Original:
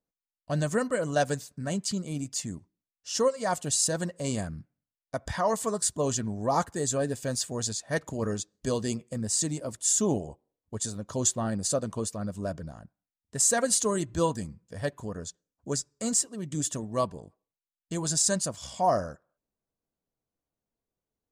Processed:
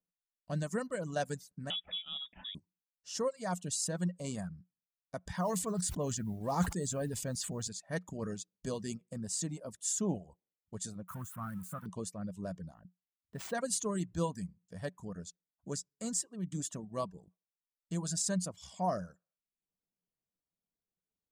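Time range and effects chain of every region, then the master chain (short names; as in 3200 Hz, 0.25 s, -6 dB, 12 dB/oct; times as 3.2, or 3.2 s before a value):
1.7–2.55 HPF 50 Hz + bell 1100 Hz +12 dB 1.7 oct + inverted band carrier 3600 Hz
5.35–7.68 low shelf 83 Hz +11.5 dB + modulation noise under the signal 28 dB + sustainer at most 42 dB/s
11.08–11.86 switching spikes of -18 dBFS + EQ curve 170 Hz 0 dB, 470 Hz -19 dB, 1300 Hz +7 dB, 2000 Hz -13 dB, 5000 Hz -29 dB, 10000 Hz -16 dB
12.74–13.55 median filter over 5 samples + bell 6500 Hz -10.5 dB 1.2 oct
whole clip: reverb removal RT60 0.53 s; bell 180 Hz +12.5 dB 0.24 oct; gain -9 dB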